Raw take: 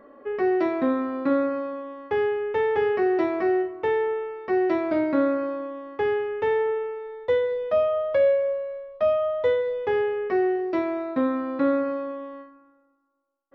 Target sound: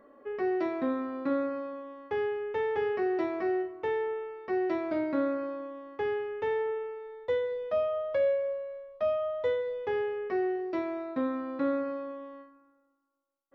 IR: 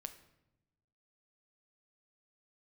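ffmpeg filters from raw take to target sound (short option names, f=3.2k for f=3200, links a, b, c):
-af "bass=f=250:g=0,treble=f=4k:g=3,volume=-7dB"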